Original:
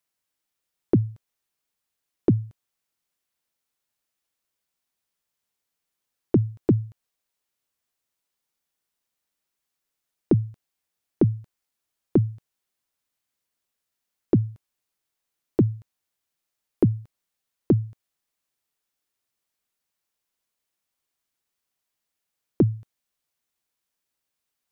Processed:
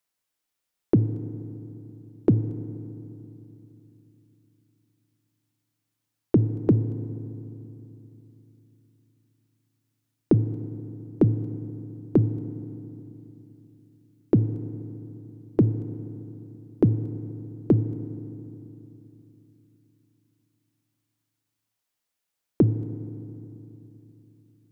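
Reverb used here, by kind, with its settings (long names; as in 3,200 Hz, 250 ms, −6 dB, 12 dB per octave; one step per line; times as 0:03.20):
feedback delay network reverb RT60 3.1 s, low-frequency decay 1.25×, high-frequency decay 0.6×, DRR 12 dB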